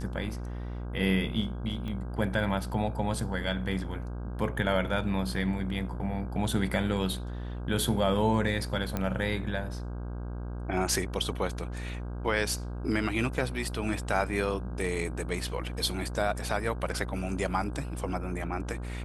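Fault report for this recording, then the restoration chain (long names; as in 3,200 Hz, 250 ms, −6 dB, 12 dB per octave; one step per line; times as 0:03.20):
mains buzz 60 Hz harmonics 27 −36 dBFS
0:01.88: click −26 dBFS
0:08.97: click −16 dBFS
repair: click removal
hum removal 60 Hz, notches 27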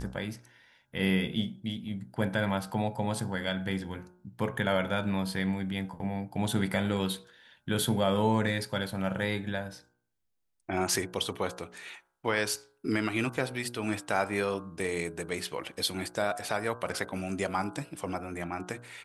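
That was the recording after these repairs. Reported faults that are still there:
0:01.88: click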